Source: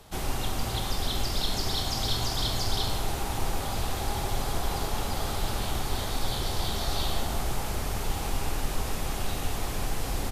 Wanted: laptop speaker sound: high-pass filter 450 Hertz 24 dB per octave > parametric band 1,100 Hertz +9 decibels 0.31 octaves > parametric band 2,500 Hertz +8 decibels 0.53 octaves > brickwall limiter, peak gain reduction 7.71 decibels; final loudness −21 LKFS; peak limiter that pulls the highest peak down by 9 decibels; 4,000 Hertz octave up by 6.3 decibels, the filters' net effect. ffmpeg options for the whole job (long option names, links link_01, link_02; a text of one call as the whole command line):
ffmpeg -i in.wav -af "equalizer=frequency=4000:width_type=o:gain=5.5,alimiter=limit=-21dB:level=0:latency=1,highpass=frequency=450:width=0.5412,highpass=frequency=450:width=1.3066,equalizer=frequency=1100:width_type=o:width=0.31:gain=9,equalizer=frequency=2500:width_type=o:width=0.53:gain=8,volume=13.5dB,alimiter=limit=-13.5dB:level=0:latency=1" out.wav